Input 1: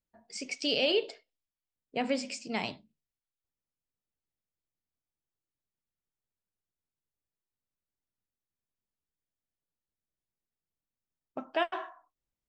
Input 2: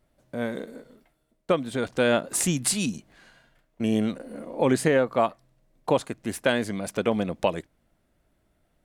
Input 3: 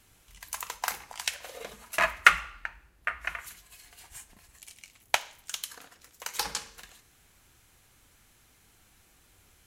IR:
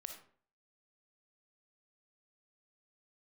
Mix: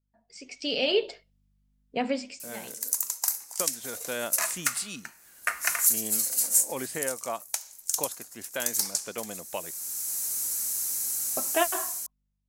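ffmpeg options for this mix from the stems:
-filter_complex "[0:a]aeval=exprs='val(0)+0.000251*(sin(2*PI*50*n/s)+sin(2*PI*2*50*n/s)/2+sin(2*PI*3*50*n/s)/3+sin(2*PI*4*50*n/s)/4+sin(2*PI*5*50*n/s)/5)':c=same,flanger=delay=0.5:depth=6.2:regen=-48:speed=0.36:shape=triangular,volume=-3.5dB[a];[1:a]lowshelf=f=440:g=-11.5,adelay=2100,volume=-7.5dB[b];[2:a]highpass=210,aexciter=amount=10.5:drive=6.4:freq=4.8k,adelay=2400,volume=0.5dB[c];[a][c]amix=inputs=2:normalize=0,dynaudnorm=f=140:g=11:m=12dB,alimiter=limit=-9dB:level=0:latency=1:release=491,volume=0dB[d];[b][d]amix=inputs=2:normalize=0"

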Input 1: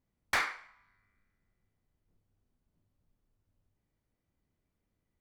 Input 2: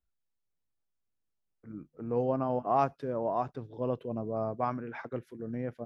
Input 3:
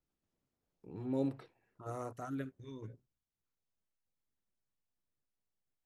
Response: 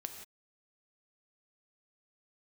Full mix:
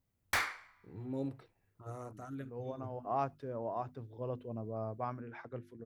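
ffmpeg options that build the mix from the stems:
-filter_complex "[0:a]highshelf=f=10k:g=10,volume=-3dB[a];[1:a]bandreject=f=50:t=h:w=6,bandreject=f=100:t=h:w=6,bandreject=f=150:t=h:w=6,bandreject=f=200:t=h:w=6,bandreject=f=250:t=h:w=6,bandreject=f=300:t=h:w=6,bandreject=f=350:t=h:w=6,adelay=400,volume=-7.5dB[b];[2:a]volume=-4.5dB,asplit=2[c][d];[d]apad=whole_len=275793[e];[b][e]sidechaincompress=threshold=-52dB:ratio=6:attack=8.8:release=390[f];[a][f][c]amix=inputs=3:normalize=0,equalizer=f=95:t=o:w=0.71:g=8.5"

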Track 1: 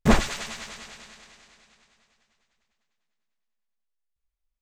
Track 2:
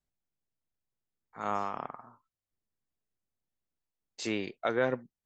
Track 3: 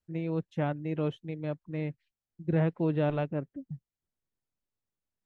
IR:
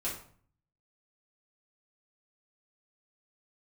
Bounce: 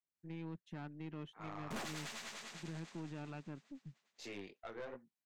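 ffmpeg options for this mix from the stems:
-filter_complex "[0:a]adelay=1650,volume=-6dB[a];[1:a]lowpass=6.4k,alimiter=limit=-21.5dB:level=0:latency=1:release=446,flanger=delay=16:depth=5.6:speed=2.8,volume=-7dB,asplit=2[b][c];[2:a]alimiter=level_in=1.5dB:limit=-24dB:level=0:latency=1:release=215,volume=-1.5dB,equalizer=f=530:t=o:w=0.74:g=-15,adelay=150,volume=-4.5dB[d];[c]apad=whole_len=276185[e];[a][e]sidechaincompress=threshold=-45dB:ratio=8:attack=32:release=1030[f];[f][b][d]amix=inputs=3:normalize=0,highpass=190,aeval=exprs='(tanh(100*val(0)+0.4)-tanh(0.4))/100':c=same"

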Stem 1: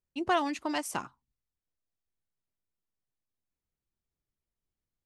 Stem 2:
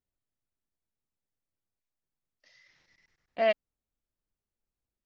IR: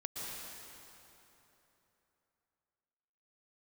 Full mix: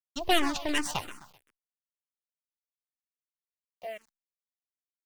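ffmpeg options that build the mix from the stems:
-filter_complex "[0:a]equalizer=f=3.5k:w=1.4:g=10.5,aeval=exprs='0.251*(cos(1*acos(clip(val(0)/0.251,-1,1)))-cos(1*PI/2))+0.0282*(cos(5*acos(clip(val(0)/0.251,-1,1)))-cos(5*PI/2))+0.0158*(cos(7*acos(clip(val(0)/0.251,-1,1)))-cos(7*PI/2))+0.0501*(cos(8*acos(clip(val(0)/0.251,-1,1)))-cos(8*PI/2))':c=same,volume=1.5dB,asplit=2[a][b];[b]volume=-12.5dB[c];[1:a]alimiter=limit=-23.5dB:level=0:latency=1:release=28,aeval=exprs='clip(val(0),-1,0.0631)':c=same,adelay=450,volume=-6.5dB,asplit=2[d][e];[e]volume=-23.5dB[f];[c][f]amix=inputs=2:normalize=0,aecho=0:1:129|258|387|516|645:1|0.35|0.122|0.0429|0.015[g];[a][d][g]amix=inputs=3:normalize=0,acrusher=bits=8:mix=0:aa=0.000001,asplit=2[h][i];[i]afreqshift=-2.8[j];[h][j]amix=inputs=2:normalize=1"

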